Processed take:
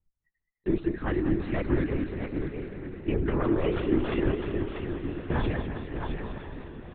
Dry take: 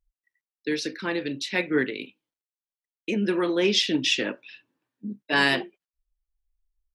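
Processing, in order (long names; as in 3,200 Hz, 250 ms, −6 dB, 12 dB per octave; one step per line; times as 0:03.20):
phase distortion by the signal itself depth 0.32 ms
low-pass filter 1,500 Hz 12 dB per octave
parametric band 290 Hz +8.5 dB 0.46 octaves
comb filter 6.9 ms, depth 64%
brickwall limiter −18 dBFS, peak gain reduction 14 dB
feedback delay with all-pass diffusion 1,015 ms, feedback 54%, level −10.5 dB
reverb reduction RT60 0.76 s
multi-tap delay 94/170/348/650 ms −18/−18/−13/−6.5 dB
linear-prediction vocoder at 8 kHz whisper
feedback echo with a swinging delay time 207 ms, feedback 48%, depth 114 cents, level −10 dB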